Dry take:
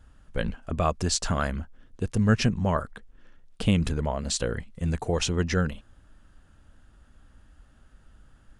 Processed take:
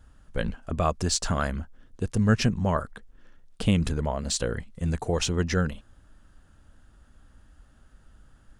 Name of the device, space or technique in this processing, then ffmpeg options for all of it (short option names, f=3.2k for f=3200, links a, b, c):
exciter from parts: -filter_complex "[0:a]asplit=2[a][b];[b]highpass=f=2.3k:w=0.5412,highpass=f=2.3k:w=1.3066,asoftclip=type=tanh:threshold=-32dB,volume=-12dB[c];[a][c]amix=inputs=2:normalize=0"